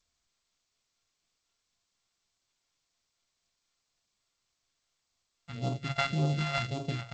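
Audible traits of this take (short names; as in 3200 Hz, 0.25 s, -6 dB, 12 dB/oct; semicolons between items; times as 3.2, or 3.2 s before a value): a buzz of ramps at a fixed pitch in blocks of 64 samples; phasing stages 2, 1.8 Hz, lowest notch 300–1800 Hz; tremolo triangle 4.1 Hz, depth 45%; G.722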